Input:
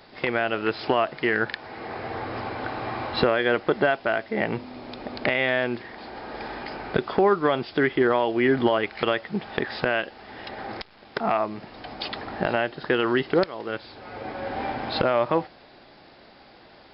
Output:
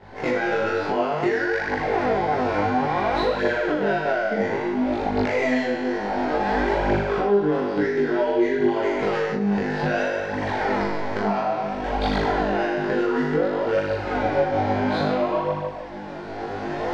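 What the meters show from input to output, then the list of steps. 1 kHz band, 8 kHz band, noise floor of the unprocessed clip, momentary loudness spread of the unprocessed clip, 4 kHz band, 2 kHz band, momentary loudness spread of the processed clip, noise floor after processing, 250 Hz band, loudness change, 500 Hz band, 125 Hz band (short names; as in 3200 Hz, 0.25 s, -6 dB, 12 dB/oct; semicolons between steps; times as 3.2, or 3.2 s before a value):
+4.5 dB, n/a, -51 dBFS, 15 LU, -3.0 dB, +1.0 dB, 5 LU, -32 dBFS, +4.5 dB, +2.5 dB, +3.0 dB, +4.5 dB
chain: median filter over 15 samples; recorder AGC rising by 11 dB/s; limiter -15.5 dBFS, peak gain reduction 9 dB; notch 1200 Hz, Q 6.8; flutter echo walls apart 3.4 m, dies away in 1.1 s; compressor 5:1, threshold -24 dBFS, peak gain reduction 12 dB; LPF 3700 Hz 12 dB/oct; detuned doubles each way 20 cents; gain +8 dB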